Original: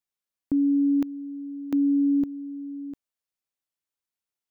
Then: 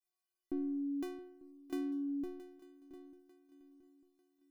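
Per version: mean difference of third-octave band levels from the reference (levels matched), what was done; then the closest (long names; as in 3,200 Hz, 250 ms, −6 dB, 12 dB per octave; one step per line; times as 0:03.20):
5.5 dB: stiff-string resonator 360 Hz, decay 0.76 s, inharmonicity 0.008
feedback echo with a long and a short gap by turns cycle 896 ms, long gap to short 3 to 1, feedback 33%, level −16 dB
level +18 dB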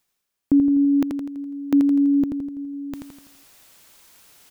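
3.5 dB: reversed playback
upward compression, threshold −37 dBFS
reversed playback
repeating echo 83 ms, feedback 51%, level −5 dB
level +7.5 dB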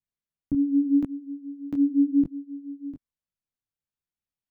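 1.0 dB: bass and treble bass +14 dB, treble −5 dB
micro pitch shift up and down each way 33 cents
level −2.5 dB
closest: third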